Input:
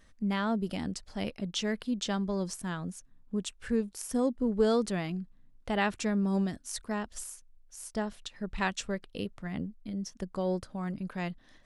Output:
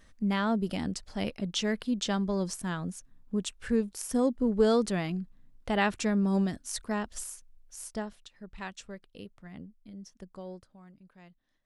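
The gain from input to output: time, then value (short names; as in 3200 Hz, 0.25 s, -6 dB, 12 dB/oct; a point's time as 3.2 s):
7.82 s +2 dB
8.28 s -9.5 dB
10.34 s -9.5 dB
10.93 s -19.5 dB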